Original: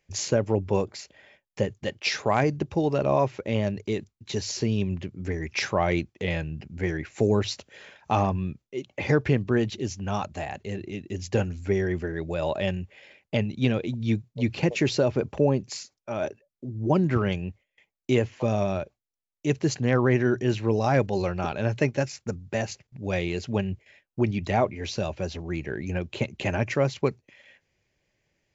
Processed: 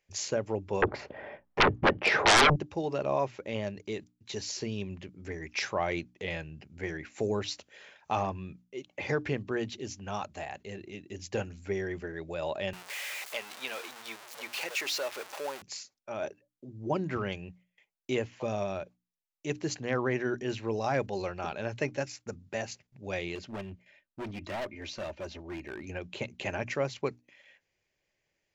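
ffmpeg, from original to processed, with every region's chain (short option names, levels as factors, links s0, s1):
-filter_complex "[0:a]asettb=1/sr,asplit=3[s0][s1][s2];[s0]atrim=end=0.824[s3];[s1]atrim=start=0.82:end=2.56,asetpts=PTS-STARTPTS,afade=t=in:d=0.004:c=qsin,afade=t=out:st=1.736:d=0.004:c=qsin,lowpass=1000,aeval=exprs='0.282*sin(PI/2*8.91*val(0)/0.282)':c=same[s4];[s2]atrim=start=2.556[s5];[s3][s4]acrossfade=d=0.004:c1=hsin:c2=qsin[s6];[s6][s5]acrossfade=d=0.004:c1=qsin:c2=hsin,asettb=1/sr,asplit=3[s7][s8][s9];[s7]atrim=end=12.734[s10];[s8]atrim=start=12.73:end=15.62,asetpts=PTS-STARTPTS,afade=t=in:d=0.004:c=qsin,afade=t=out:st=2.886:d=0.004:c=qsin,aeval=exprs='val(0)+0.5*0.0422*sgn(val(0))':c=same,highpass=800[s11];[s9]atrim=start=15.616[s12];[s10][s11]acrossfade=d=0.004:c1=hsin:c2=qsin[s13];[s13][s12]acrossfade=d=0.004:c1=qsin:c2=hsin,asettb=1/sr,asplit=3[s14][s15][s16];[s14]atrim=end=23.354[s17];[s15]atrim=start=23.35:end=25.87,asetpts=PTS-STARTPTS,afade=t=in:d=0.004:c=qsin,afade=t=out:st=2.516:d=0.004:c=qsin,lowpass=f=3700:p=1,aecho=1:1:3.3:0.45,atrim=end_sample=111132,asoftclip=type=hard:threshold=0.0473[s18];[s16]atrim=start=25.866[s19];[s17][s18]acrossfade=d=0.004:c1=hsin:c2=qsin[s20];[s20][s19]acrossfade=d=0.004:c1=qsin:c2=hsin,equalizer=f=88:w=0.3:g=-7.5,bandreject=f=60:t=h:w=6,bandreject=f=120:t=h:w=6,bandreject=f=180:t=h:w=6,bandreject=f=240:t=h:w=6,bandreject=f=300:t=h:w=6,volume=0.596"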